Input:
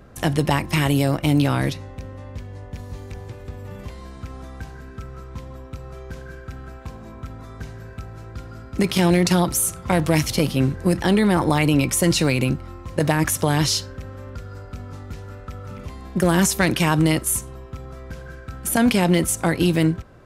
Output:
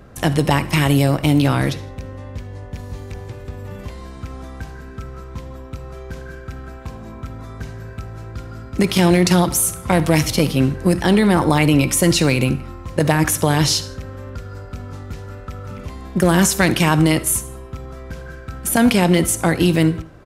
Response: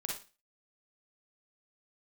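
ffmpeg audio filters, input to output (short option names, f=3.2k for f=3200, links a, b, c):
-filter_complex "[0:a]asplit=2[a][b];[b]adelay=163.3,volume=-28dB,highshelf=f=4k:g=-3.67[c];[a][c]amix=inputs=2:normalize=0,asplit=2[d][e];[1:a]atrim=start_sample=2205,asetrate=33957,aresample=44100[f];[e][f]afir=irnorm=-1:irlink=0,volume=-15dB[g];[d][g]amix=inputs=2:normalize=0,volume=2dB"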